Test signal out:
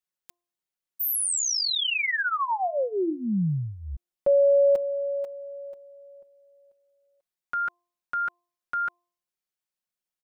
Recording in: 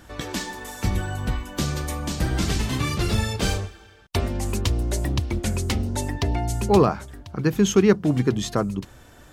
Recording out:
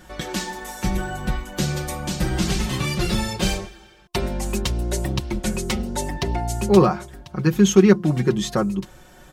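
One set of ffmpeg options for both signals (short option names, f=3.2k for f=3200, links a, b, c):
-af "aecho=1:1:5.5:0.78,bandreject=f=349.1:t=h:w=4,bandreject=f=698.2:t=h:w=4,bandreject=f=1.0473k:t=h:w=4"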